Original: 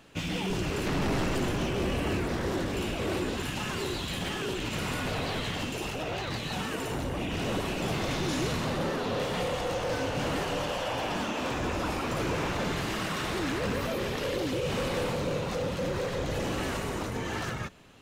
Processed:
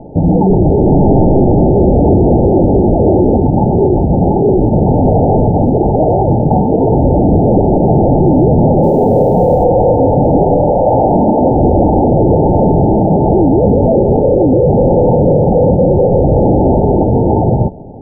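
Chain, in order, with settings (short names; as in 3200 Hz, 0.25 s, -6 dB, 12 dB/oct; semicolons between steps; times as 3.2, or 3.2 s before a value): Chebyshev low-pass 890 Hz, order 10; 8.83–9.64 short-mantissa float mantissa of 6-bit; maximiser +28 dB; gain -1 dB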